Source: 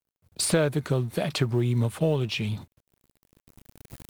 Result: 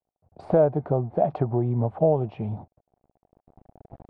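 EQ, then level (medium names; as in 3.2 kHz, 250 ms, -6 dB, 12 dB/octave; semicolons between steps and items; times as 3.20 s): resonant low-pass 740 Hz, resonance Q 4.9; -1.0 dB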